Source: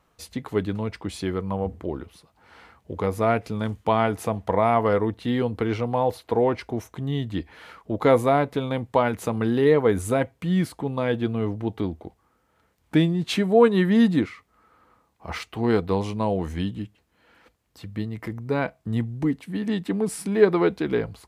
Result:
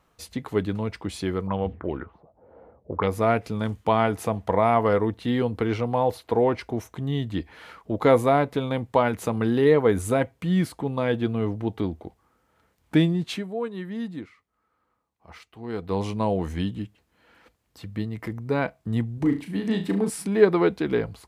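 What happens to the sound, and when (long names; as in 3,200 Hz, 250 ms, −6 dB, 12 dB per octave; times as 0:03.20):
0:01.47–0:03.08: envelope-controlled low-pass 490–3,300 Hz up, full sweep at −23.5 dBFS
0:13.16–0:16.03: duck −14 dB, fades 0.45 s quadratic
0:19.14–0:20.10: flutter between parallel walls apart 6.1 metres, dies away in 0.31 s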